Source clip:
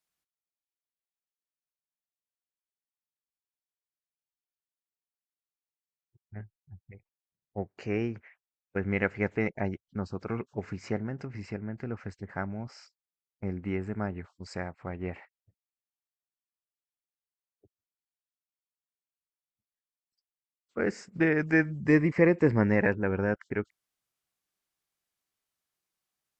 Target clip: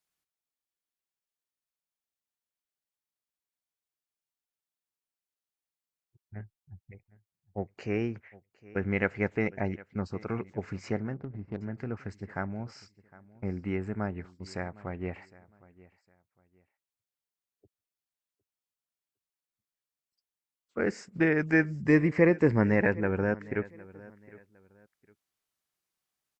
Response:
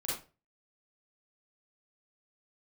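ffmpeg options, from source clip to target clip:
-filter_complex "[0:a]aecho=1:1:759|1518:0.0891|0.025,asettb=1/sr,asplit=3[link_01][link_02][link_03];[link_01]atrim=end=11.144[link_04];[link_02]atrim=start=11.14:end=11.61,asetpts=PTS-STARTPTS,afade=type=in:duration=0.004:curve=qsin,afade=type=out:start_time=0.466:duration=0.004:curve=qsin,adynamicsmooth=sensitivity=2.5:basefreq=540[link_05];[link_03]atrim=start=11.606[link_06];[link_04][link_05]acrossfade=duration=0.004:curve1=hsin:curve2=qsin[link_07];[link_07][link_06]acrossfade=duration=0.004:curve1=qsin:curve2=hsin"

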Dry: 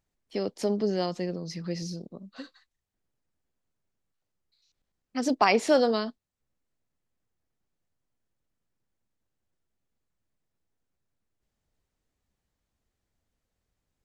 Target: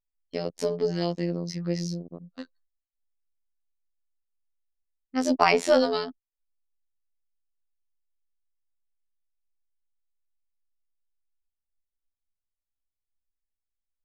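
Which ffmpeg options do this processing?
ffmpeg -i in.wav -af "afftfilt=real='hypot(re,im)*cos(PI*b)':imag='0':win_size=2048:overlap=0.75,aeval=exprs='0.473*(cos(1*acos(clip(val(0)/0.473,-1,1)))-cos(1*PI/2))+0.00473*(cos(6*acos(clip(val(0)/0.473,-1,1)))-cos(6*PI/2))':channel_layout=same,anlmdn=0.0251,volume=5dB" out.wav

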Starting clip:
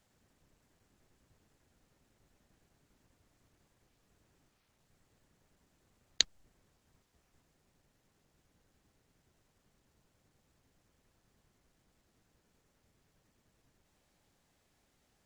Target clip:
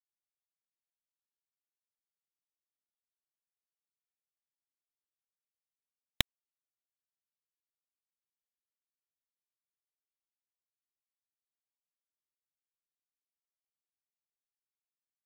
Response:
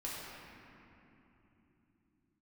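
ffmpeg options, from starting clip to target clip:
-af "aresample=8000,aresample=44100,acrusher=bits=4:mix=0:aa=0.5,aeval=exprs='0.282*(cos(1*acos(clip(val(0)/0.282,-1,1)))-cos(1*PI/2))+0.0708*(cos(8*acos(clip(val(0)/0.282,-1,1)))-cos(8*PI/2))':channel_layout=same,volume=3.5dB"

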